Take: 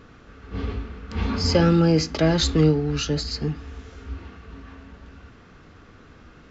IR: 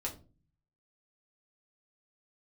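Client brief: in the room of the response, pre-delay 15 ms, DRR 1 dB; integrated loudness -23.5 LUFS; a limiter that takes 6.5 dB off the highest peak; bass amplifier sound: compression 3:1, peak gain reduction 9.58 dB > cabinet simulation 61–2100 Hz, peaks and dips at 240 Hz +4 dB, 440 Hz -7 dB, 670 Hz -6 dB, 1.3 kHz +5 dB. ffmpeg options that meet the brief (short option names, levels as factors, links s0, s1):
-filter_complex "[0:a]alimiter=limit=0.237:level=0:latency=1,asplit=2[s0][s1];[1:a]atrim=start_sample=2205,adelay=15[s2];[s1][s2]afir=irnorm=-1:irlink=0,volume=0.75[s3];[s0][s3]amix=inputs=2:normalize=0,acompressor=threshold=0.0562:ratio=3,highpass=f=61:w=0.5412,highpass=f=61:w=1.3066,equalizer=f=240:t=q:w=4:g=4,equalizer=f=440:t=q:w=4:g=-7,equalizer=f=670:t=q:w=4:g=-6,equalizer=f=1300:t=q:w=4:g=5,lowpass=f=2100:w=0.5412,lowpass=f=2100:w=1.3066,volume=2.24"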